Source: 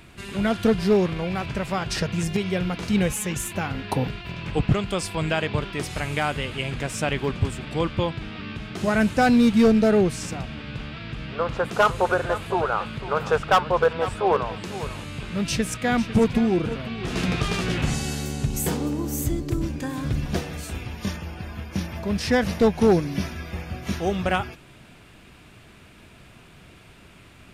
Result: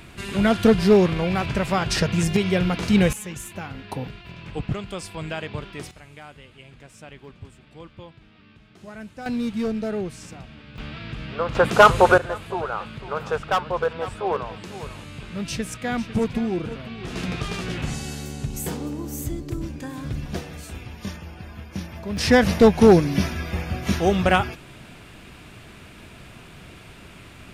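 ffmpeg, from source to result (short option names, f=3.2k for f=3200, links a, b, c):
-af "asetnsamples=n=441:p=0,asendcmd='3.13 volume volume -6.5dB;5.91 volume volume -18dB;9.26 volume volume -9dB;10.78 volume volume 0dB;11.55 volume volume 7dB;12.18 volume volume -4dB;22.17 volume volume 5dB',volume=4dB"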